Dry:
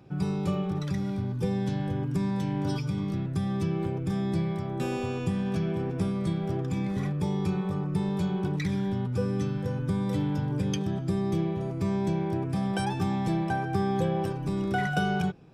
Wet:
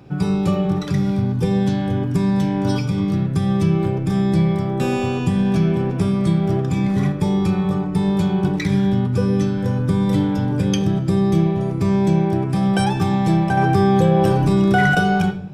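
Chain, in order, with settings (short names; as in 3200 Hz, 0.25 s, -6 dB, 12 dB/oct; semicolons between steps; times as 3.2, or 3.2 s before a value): reverb RT60 0.70 s, pre-delay 7 ms, DRR 8.5 dB; 13.57–14.95 fast leveller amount 70%; gain +9 dB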